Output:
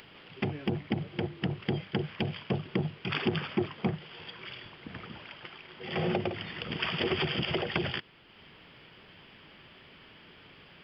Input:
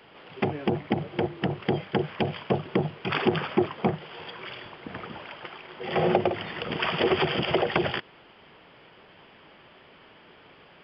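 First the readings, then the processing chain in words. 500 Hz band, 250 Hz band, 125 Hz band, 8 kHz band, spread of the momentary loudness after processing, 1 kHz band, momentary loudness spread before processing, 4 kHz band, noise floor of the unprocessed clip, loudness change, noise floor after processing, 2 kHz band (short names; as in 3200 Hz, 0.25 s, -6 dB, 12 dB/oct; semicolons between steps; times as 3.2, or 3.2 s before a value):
-8.0 dB, -4.5 dB, -2.0 dB, n/a, 22 LU, -9.5 dB, 15 LU, -2.0 dB, -54 dBFS, -5.5 dB, -55 dBFS, -4.5 dB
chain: bell 700 Hz -10.5 dB 2.6 oct; upward compressor, threshold -47 dBFS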